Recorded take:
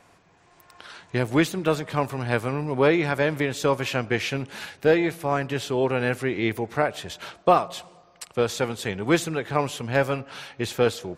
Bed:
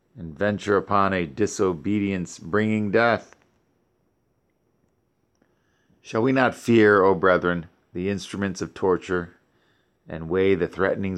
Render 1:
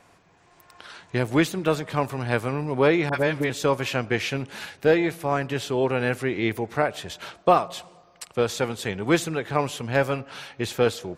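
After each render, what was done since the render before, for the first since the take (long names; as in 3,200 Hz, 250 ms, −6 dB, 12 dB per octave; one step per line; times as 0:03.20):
0:03.09–0:03.50: all-pass dispersion highs, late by 43 ms, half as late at 1,100 Hz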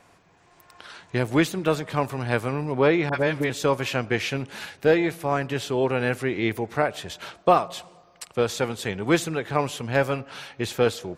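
0:02.72–0:03.27: high-frequency loss of the air 54 metres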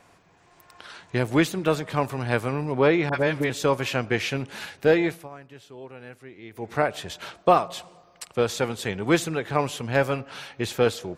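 0:05.07–0:06.74: duck −18.5 dB, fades 0.22 s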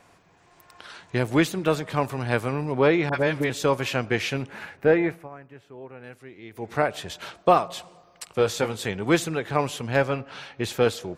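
0:04.48–0:06.04: flat-topped bell 6,300 Hz −12 dB 2.4 octaves
0:08.26–0:08.86: double-tracking delay 19 ms −9 dB
0:10.02–0:10.64: high-frequency loss of the air 67 metres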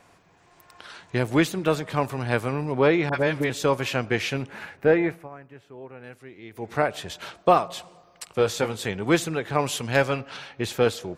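0:09.66–0:10.37: high-shelf EQ 2,500 Hz +7.5 dB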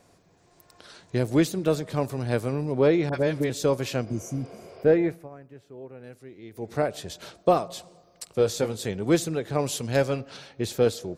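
0:04.09–0:04.81: healed spectral selection 360–5,600 Hz before
flat-topped bell 1,600 Hz −8 dB 2.3 octaves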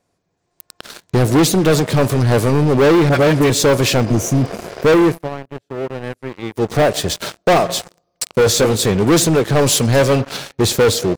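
leveller curve on the samples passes 5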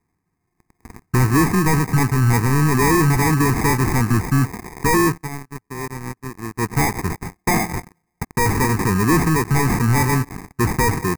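decimation without filtering 31×
phaser with its sweep stopped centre 1,400 Hz, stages 4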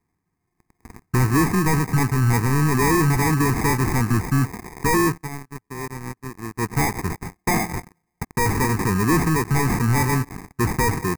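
level −2.5 dB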